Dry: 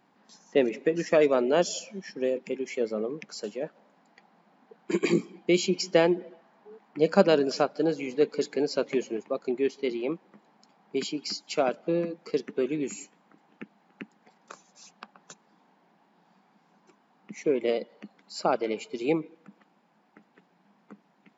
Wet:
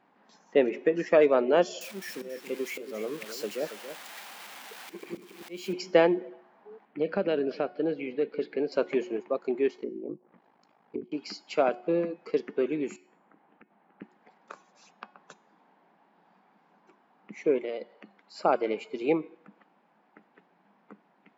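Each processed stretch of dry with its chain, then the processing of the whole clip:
1.81–5.73 s: zero-crossing glitches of -25 dBFS + slow attack 376 ms + delay 278 ms -11 dB
6.85–8.72 s: low-pass 3.8 kHz 24 dB/octave + peaking EQ 1 kHz -9.5 dB 1 oct + compression 3:1, threshold -23 dBFS
9.76–11.12 s: low-pass that closes with the level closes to 340 Hz, closed at -28.5 dBFS + ring modulator 26 Hz
12.96–14.02 s: compression, threshold -50 dBFS + distance through air 280 m
17.58–18.35 s: bass shelf 380 Hz -6 dB + hum notches 50/100/150/200 Hz + compression 4:1, threshold -31 dBFS
whole clip: tone controls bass -7 dB, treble -14 dB; de-hum 363.8 Hz, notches 37; trim +1.5 dB

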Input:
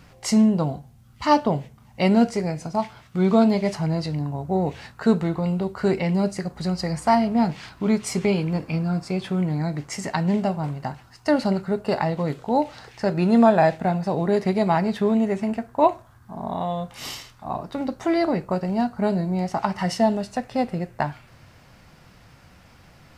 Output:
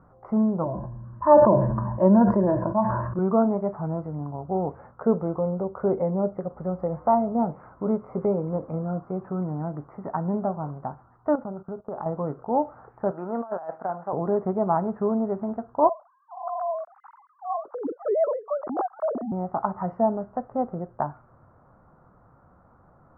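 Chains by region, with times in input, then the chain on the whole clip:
0.63–3.19 s: rippled EQ curve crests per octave 1.3, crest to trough 17 dB + decay stretcher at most 23 dB/s
4.79–8.98 s: dynamic bell 1.6 kHz, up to -5 dB, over -39 dBFS, Q 1.3 + small resonant body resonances 530/2100 Hz, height 8 dB, ringing for 25 ms
11.35–12.06 s: low-pass 1.8 kHz + gate -33 dBFS, range -16 dB + compression 4:1, threshold -27 dBFS
13.11–14.13 s: band-pass filter 1.7 kHz, Q 0.64 + compressor with a negative ratio -26 dBFS, ratio -0.5 + tape noise reduction on one side only decoder only
15.89–19.32 s: formants replaced by sine waves + distance through air 400 m
whole clip: elliptic low-pass 1.3 kHz, stop band 60 dB; bass shelf 340 Hz -6.5 dB

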